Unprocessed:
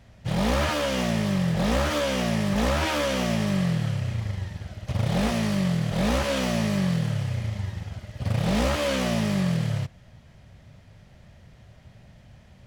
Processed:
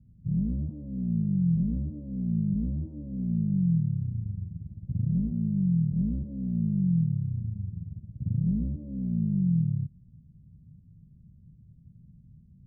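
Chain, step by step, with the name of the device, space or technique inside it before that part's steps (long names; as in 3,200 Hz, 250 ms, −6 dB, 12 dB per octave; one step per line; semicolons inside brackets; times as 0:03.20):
the neighbour's flat through the wall (low-pass filter 260 Hz 24 dB per octave; parametric band 160 Hz +7.5 dB 0.51 octaves)
level −5 dB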